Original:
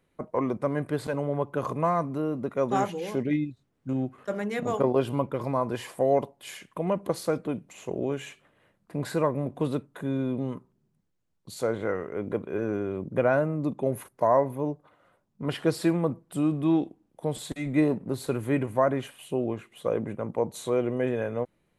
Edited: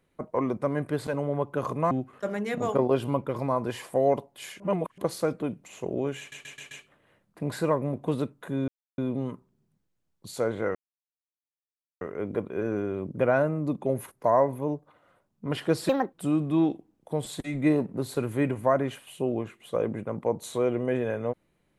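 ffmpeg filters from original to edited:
-filter_complex "[0:a]asplit=12[a][b][c][d][e][f][g][h][i][j][k][l];[a]atrim=end=1.912[m];[b]atrim=start=3.958:end=6.652[n];[c]atrim=start=6.648:end=7.032,asetpts=PTS-STARTPTS,areverse[o];[d]atrim=start=7.028:end=8.372[p];[e]atrim=start=8.238:end=8.372[q];[f]atrim=start=8.238:end=8.372[r];[g]atrim=start=8.238:end=8.372[s];[h]atrim=start=8.238:end=10.21,asetpts=PTS-STARTPTS,afade=t=out:st=1.968:d=0.004:c=hsin,apad=pad_dur=0.3[t];[i]atrim=start=10.21:end=11.98,asetpts=PTS-STARTPTS,afade=t=in:d=0.004:c=hsin,afade=t=out:st=1.766:d=0.004:c=hsin,apad=pad_dur=1.26[u];[j]atrim=start=11.98:end=15.864,asetpts=PTS-STARTPTS,afade=t=in:d=0.004:c=hsin[v];[k]atrim=start=15.86:end=16.25,asetpts=PTS-STARTPTS,asetrate=71001,aresample=44100[w];[l]atrim=start=16.246[x];[m][n]acrossfade=d=0.004:c1=hsin:c2=hsin[y];[y][o]acrossfade=d=0.004:c1=hsin:c2=hsin[z];[z][p]acrossfade=d=0.004:c1=hsin:c2=hsin[aa];[aa][q]acrossfade=d=0.004:c1=hsin:c2=hsin[ab];[ab][r]acrossfade=d=0.004:c1=hsin:c2=hsin[ac];[ac][s]acrossfade=d=0.004:c1=hsin:c2=hsin[ad];[t][u][v]concat=n=3:v=0:a=1[ae];[ad][ae]acrossfade=d=0.004:c1=hsin:c2=hsin[af];[af][w]acrossfade=d=0.004:c1=hsin:c2=hsin[ag];[ag][x]acrossfade=d=0.004:c1=hsin:c2=hsin"

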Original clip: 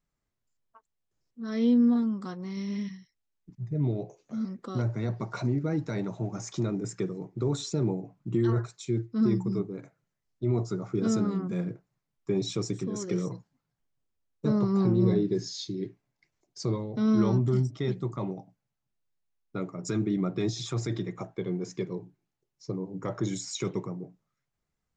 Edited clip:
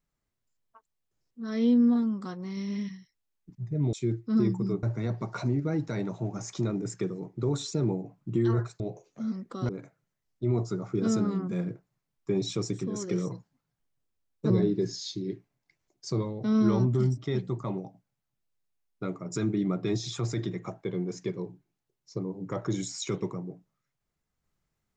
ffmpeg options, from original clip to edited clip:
-filter_complex "[0:a]asplit=6[a][b][c][d][e][f];[a]atrim=end=3.932[g];[b]atrim=start=8.788:end=9.692[h];[c]atrim=start=4.818:end=8.792[i];[d]atrim=start=3.928:end=4.822[j];[e]atrim=start=9.688:end=14.502[k];[f]atrim=start=15.028[l];[g][h]acrossfade=d=0.004:c1=hsin:c2=hsin[m];[m][i]acrossfade=d=0.004:c1=hsin:c2=hsin[n];[n][j]acrossfade=d=0.004:c1=hsin:c2=hsin[o];[o][k]acrossfade=d=0.004:c1=hsin:c2=hsin[p];[p][l]acrossfade=d=0.004:c1=hsin:c2=hsin"

